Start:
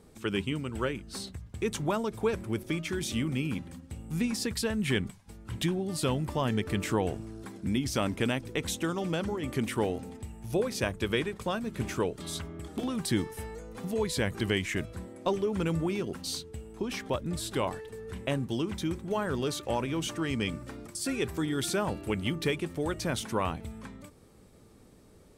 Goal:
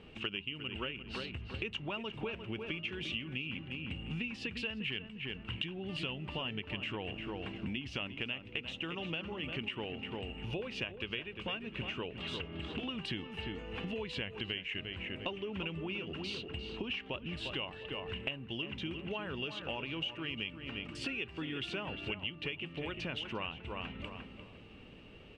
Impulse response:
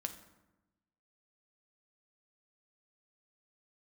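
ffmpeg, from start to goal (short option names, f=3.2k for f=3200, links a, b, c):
-filter_complex "[0:a]lowpass=f=2.8k:t=q:w=15,asplit=2[a][b];[b]adelay=350,lowpass=f=2.2k:p=1,volume=-9dB,asplit=2[c][d];[d]adelay=350,lowpass=f=2.2k:p=1,volume=0.25,asplit=2[e][f];[f]adelay=350,lowpass=f=2.2k:p=1,volume=0.25[g];[a][c][e][g]amix=inputs=4:normalize=0,acompressor=threshold=-38dB:ratio=6,volume=1dB"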